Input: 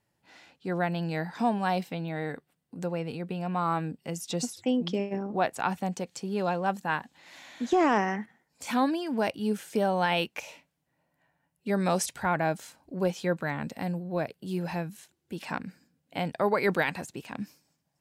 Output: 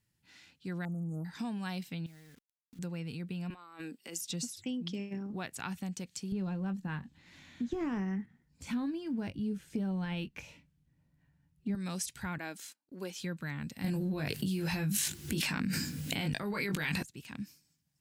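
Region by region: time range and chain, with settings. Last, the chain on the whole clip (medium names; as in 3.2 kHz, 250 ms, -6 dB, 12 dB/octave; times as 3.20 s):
0.85–1.25 s: brick-wall FIR band-stop 1.3–7.8 kHz + loudspeaker Doppler distortion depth 0.19 ms
2.06–2.79 s: treble shelf 3.5 kHz -8 dB + compression 8:1, threshold -47 dBFS + word length cut 10-bit, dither none
3.50–4.21 s: high-pass 300 Hz 24 dB/octave + compressor with a negative ratio -38 dBFS
6.32–11.75 s: companded quantiser 8-bit + tilt EQ -3.5 dB/octave + doubling 21 ms -11 dB
12.38–13.20 s: high-pass 250 Hz 24 dB/octave + gate -53 dBFS, range -20 dB
13.84–17.03 s: doubling 20 ms -4 dB + level flattener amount 100%
whole clip: amplifier tone stack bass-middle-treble 6-0-2; compression 2.5:1, threshold -50 dBFS; trim +14.5 dB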